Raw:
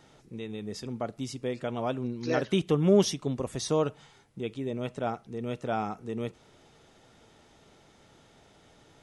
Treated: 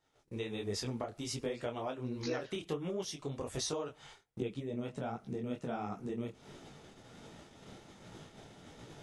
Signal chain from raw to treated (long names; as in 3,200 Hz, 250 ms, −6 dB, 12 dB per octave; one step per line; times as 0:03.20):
parametric band 190 Hz −8 dB 1.4 octaves, from 0:04.40 +5 dB
noise gate −56 dBFS, range −25 dB
downward compressor 16 to 1, threshold −40 dBFS, peak gain reduction 21.5 dB
micro pitch shift up and down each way 47 cents
level +9.5 dB